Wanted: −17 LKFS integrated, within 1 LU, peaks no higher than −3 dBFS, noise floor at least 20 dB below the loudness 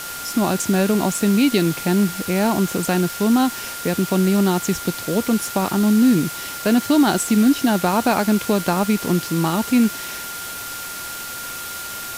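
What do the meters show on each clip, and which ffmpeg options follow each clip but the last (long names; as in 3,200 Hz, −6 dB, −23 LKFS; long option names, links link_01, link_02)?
interfering tone 1,400 Hz; level of the tone −33 dBFS; background noise floor −31 dBFS; target noise floor −40 dBFS; integrated loudness −19.5 LKFS; sample peak −6.0 dBFS; target loudness −17.0 LKFS
→ -af "bandreject=frequency=1400:width=30"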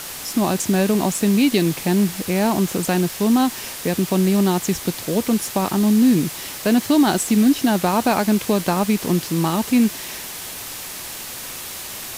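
interfering tone none found; background noise floor −33 dBFS; target noise floor −40 dBFS
→ -af "afftdn=noise_reduction=7:noise_floor=-33"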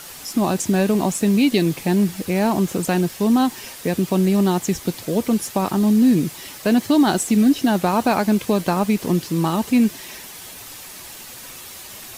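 background noise floor −38 dBFS; target noise floor −40 dBFS
→ -af "afftdn=noise_reduction=6:noise_floor=-38"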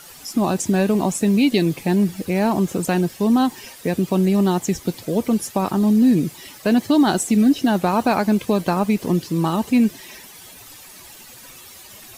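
background noise floor −42 dBFS; integrated loudness −19.5 LKFS; sample peak −7.0 dBFS; target loudness −17.0 LKFS
→ -af "volume=2.5dB"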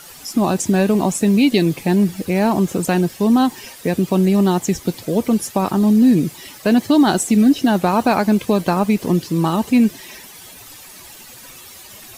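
integrated loudness −17.0 LKFS; sample peak −4.5 dBFS; background noise floor −40 dBFS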